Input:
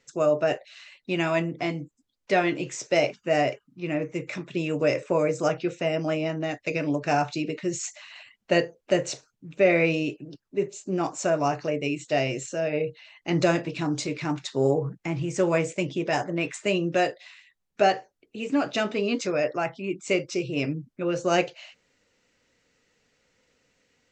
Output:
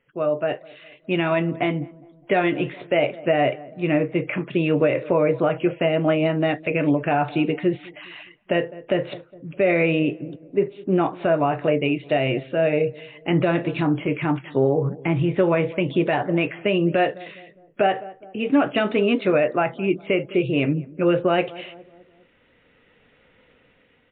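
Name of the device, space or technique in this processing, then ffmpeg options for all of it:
low-bitrate web radio: -filter_complex "[0:a]asettb=1/sr,asplit=3[link_01][link_02][link_03];[link_01]atrim=end=9.994[link_04];[link_02]atrim=start=9.99:end=10.66,asetpts=PTS-STARTPTS,afade=type=in:duration=0.004:curve=qsin,afade=type=out:start_time=0.666:duration=0.004:curve=qsin,lowpass=2700[link_05];[link_03]atrim=start=10.656[link_06];[link_04][link_05]acrossfade=duration=0.004:curve1=hsin:curve2=qsin[link_07];[link_07][link_06]acrossfade=duration=0.004:curve1=qsin:curve2=hsin,highshelf=frequency=3700:gain=-4.5,asplit=2[link_08][link_09];[link_09]adelay=205,lowpass=frequency=960:poles=1,volume=-22.5dB,asplit=2[link_10][link_11];[link_11]adelay=205,lowpass=frequency=960:poles=1,volume=0.53,asplit=2[link_12][link_13];[link_13]adelay=205,lowpass=frequency=960:poles=1,volume=0.53,asplit=2[link_14][link_15];[link_15]adelay=205,lowpass=frequency=960:poles=1,volume=0.53[link_16];[link_08][link_10][link_12][link_14][link_16]amix=inputs=5:normalize=0,dynaudnorm=framelen=210:gausssize=11:maxgain=13dB,alimiter=limit=-9dB:level=0:latency=1:release=161" -ar 8000 -c:a libmp3lame -b:a 48k

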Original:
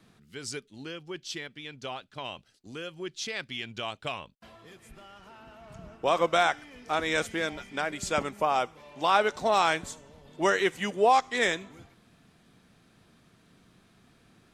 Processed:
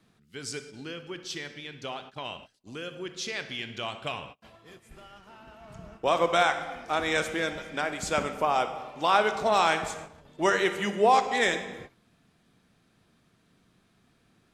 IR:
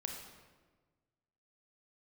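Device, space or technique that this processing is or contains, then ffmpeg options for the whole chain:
keyed gated reverb: -filter_complex "[0:a]asplit=3[link_01][link_02][link_03];[1:a]atrim=start_sample=2205[link_04];[link_02][link_04]afir=irnorm=-1:irlink=0[link_05];[link_03]apad=whole_len=640969[link_06];[link_05][link_06]sidechaingate=range=-33dB:threshold=-50dB:ratio=16:detection=peak,volume=1.5dB[link_07];[link_01][link_07]amix=inputs=2:normalize=0,volume=-5dB"

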